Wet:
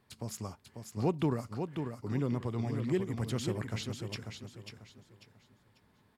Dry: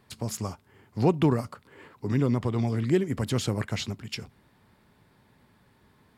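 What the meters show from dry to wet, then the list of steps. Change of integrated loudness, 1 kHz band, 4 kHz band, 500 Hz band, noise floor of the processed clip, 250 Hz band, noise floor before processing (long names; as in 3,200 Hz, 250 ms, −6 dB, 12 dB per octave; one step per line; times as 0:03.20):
−7.5 dB, −7.0 dB, −7.0 dB, −7.0 dB, −68 dBFS, −7.0 dB, −63 dBFS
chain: repeating echo 543 ms, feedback 30%, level −6.5 dB
level −8 dB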